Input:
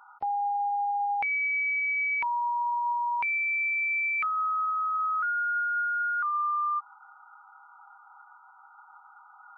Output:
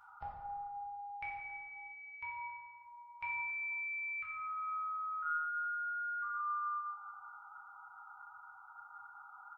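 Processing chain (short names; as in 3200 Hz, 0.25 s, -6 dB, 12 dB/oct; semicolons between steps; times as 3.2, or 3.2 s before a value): EQ curve 110 Hz 0 dB, 270 Hz -29 dB, 2100 Hz -14 dB; compressor 10:1, threshold -54 dBFS, peak gain reduction 13.5 dB; feedback echo 0.278 s, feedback 43%, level -22 dB; plate-style reverb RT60 1.8 s, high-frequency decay 0.5×, DRR -5 dB; gain +10 dB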